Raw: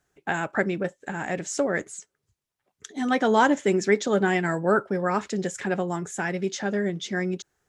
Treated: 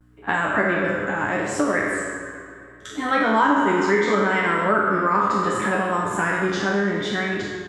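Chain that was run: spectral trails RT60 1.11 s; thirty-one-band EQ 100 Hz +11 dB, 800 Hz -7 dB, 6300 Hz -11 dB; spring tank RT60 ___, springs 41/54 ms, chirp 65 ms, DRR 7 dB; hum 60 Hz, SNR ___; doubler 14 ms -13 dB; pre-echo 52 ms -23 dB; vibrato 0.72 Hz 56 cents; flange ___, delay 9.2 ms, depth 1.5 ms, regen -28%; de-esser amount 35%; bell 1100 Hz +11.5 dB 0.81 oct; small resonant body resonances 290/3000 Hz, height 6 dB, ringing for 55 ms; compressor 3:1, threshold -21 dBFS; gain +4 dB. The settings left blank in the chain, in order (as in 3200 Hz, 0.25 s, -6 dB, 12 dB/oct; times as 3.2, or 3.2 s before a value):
2.5 s, 31 dB, 0.69 Hz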